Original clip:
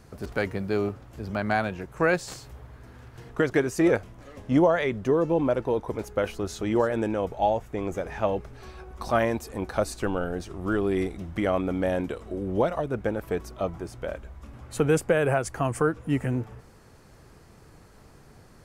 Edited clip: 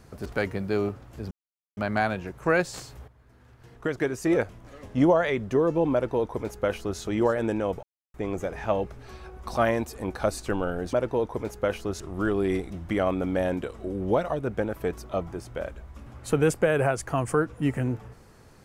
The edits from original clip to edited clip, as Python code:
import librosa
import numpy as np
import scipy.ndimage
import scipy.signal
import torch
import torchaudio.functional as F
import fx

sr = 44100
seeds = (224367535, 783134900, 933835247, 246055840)

y = fx.edit(x, sr, fx.insert_silence(at_s=1.31, length_s=0.46),
    fx.fade_in_from(start_s=2.62, length_s=1.7, floor_db=-13.5),
    fx.duplicate(start_s=5.47, length_s=1.07, to_s=10.47),
    fx.silence(start_s=7.37, length_s=0.31), tone=tone)